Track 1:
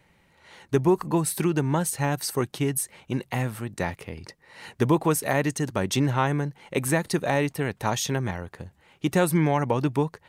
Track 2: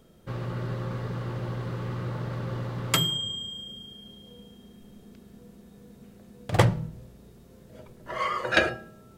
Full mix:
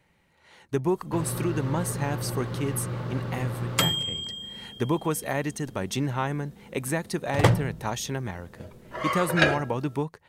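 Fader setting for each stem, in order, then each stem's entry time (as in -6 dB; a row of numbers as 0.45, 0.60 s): -4.5, +0.5 dB; 0.00, 0.85 s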